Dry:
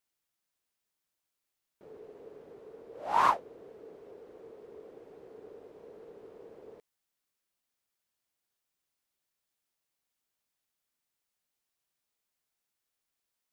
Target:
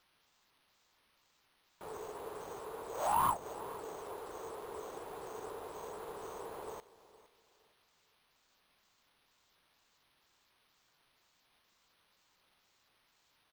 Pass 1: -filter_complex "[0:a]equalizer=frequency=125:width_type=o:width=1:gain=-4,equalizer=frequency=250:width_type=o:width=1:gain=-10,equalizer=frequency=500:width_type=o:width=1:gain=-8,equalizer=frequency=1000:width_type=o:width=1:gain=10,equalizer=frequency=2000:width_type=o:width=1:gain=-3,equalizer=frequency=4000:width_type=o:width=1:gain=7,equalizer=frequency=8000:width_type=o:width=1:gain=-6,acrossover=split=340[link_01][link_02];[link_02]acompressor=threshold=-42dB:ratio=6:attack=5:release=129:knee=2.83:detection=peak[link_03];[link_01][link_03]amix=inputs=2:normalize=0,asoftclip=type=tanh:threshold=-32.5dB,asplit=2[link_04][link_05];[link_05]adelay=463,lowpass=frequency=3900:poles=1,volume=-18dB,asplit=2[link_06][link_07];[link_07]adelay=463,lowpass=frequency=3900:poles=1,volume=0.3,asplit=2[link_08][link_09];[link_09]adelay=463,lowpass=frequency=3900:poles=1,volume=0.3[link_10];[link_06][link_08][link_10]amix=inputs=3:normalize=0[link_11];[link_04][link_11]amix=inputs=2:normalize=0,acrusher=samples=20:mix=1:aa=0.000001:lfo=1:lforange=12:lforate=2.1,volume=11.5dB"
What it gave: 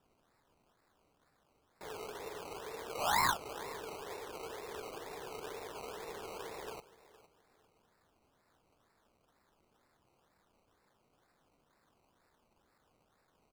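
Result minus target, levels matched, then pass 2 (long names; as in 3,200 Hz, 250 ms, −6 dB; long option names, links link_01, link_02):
sample-and-hold swept by an LFO: distortion +17 dB
-filter_complex "[0:a]equalizer=frequency=125:width_type=o:width=1:gain=-4,equalizer=frequency=250:width_type=o:width=1:gain=-10,equalizer=frequency=500:width_type=o:width=1:gain=-8,equalizer=frequency=1000:width_type=o:width=1:gain=10,equalizer=frequency=2000:width_type=o:width=1:gain=-3,equalizer=frequency=4000:width_type=o:width=1:gain=7,equalizer=frequency=8000:width_type=o:width=1:gain=-6,acrossover=split=340[link_01][link_02];[link_02]acompressor=threshold=-42dB:ratio=6:attack=5:release=129:knee=2.83:detection=peak[link_03];[link_01][link_03]amix=inputs=2:normalize=0,asoftclip=type=tanh:threshold=-32.5dB,asplit=2[link_04][link_05];[link_05]adelay=463,lowpass=frequency=3900:poles=1,volume=-18dB,asplit=2[link_06][link_07];[link_07]adelay=463,lowpass=frequency=3900:poles=1,volume=0.3,asplit=2[link_08][link_09];[link_09]adelay=463,lowpass=frequency=3900:poles=1,volume=0.3[link_10];[link_06][link_08][link_10]amix=inputs=3:normalize=0[link_11];[link_04][link_11]amix=inputs=2:normalize=0,acrusher=samples=5:mix=1:aa=0.000001:lfo=1:lforange=3:lforate=2.1,volume=11.5dB"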